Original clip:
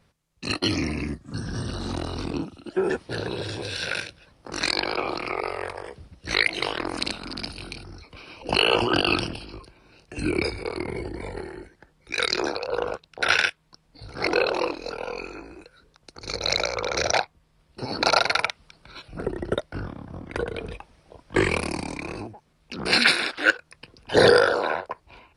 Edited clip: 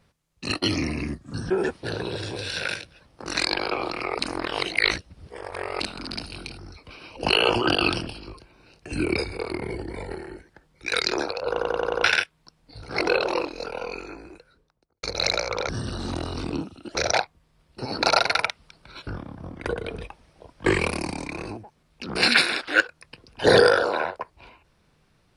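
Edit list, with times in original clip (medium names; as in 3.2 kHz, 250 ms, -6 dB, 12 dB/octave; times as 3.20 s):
1.50–2.76 s: move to 16.95 s
5.45–7.06 s: reverse
12.76 s: stutter in place 0.09 s, 6 plays
15.47–16.29 s: studio fade out
19.07–19.77 s: delete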